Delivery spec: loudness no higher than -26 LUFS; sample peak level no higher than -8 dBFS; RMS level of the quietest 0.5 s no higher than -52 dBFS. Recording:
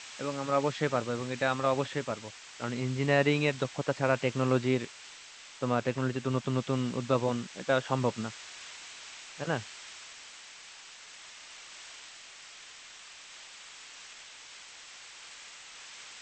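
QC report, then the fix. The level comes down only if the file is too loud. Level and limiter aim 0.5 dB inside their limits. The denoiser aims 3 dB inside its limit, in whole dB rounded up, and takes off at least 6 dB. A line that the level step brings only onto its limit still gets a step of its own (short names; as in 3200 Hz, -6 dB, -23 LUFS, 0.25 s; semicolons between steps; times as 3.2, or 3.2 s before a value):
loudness -30.5 LUFS: OK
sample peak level -10.5 dBFS: OK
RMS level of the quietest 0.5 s -50 dBFS: fail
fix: denoiser 6 dB, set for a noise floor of -50 dBFS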